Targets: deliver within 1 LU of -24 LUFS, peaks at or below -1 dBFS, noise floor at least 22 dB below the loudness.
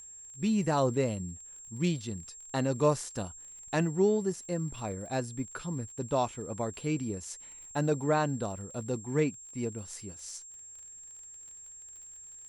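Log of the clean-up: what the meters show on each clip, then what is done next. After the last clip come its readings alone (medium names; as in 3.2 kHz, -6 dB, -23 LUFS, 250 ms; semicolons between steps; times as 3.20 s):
tick rate 37 per s; steady tone 7.5 kHz; tone level -46 dBFS; loudness -32.5 LUFS; peak level -14.5 dBFS; loudness target -24.0 LUFS
-> de-click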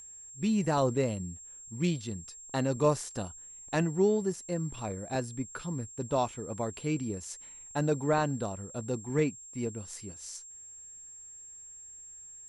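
tick rate 0.080 per s; steady tone 7.5 kHz; tone level -46 dBFS
-> band-stop 7.5 kHz, Q 30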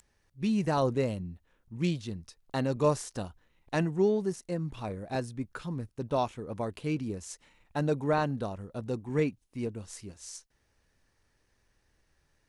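steady tone not found; loudness -32.0 LUFS; peak level -14.0 dBFS; loudness target -24.0 LUFS
-> trim +8 dB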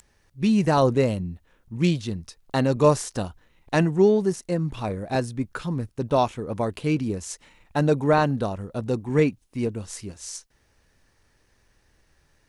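loudness -24.0 LUFS; peak level -6.0 dBFS; noise floor -65 dBFS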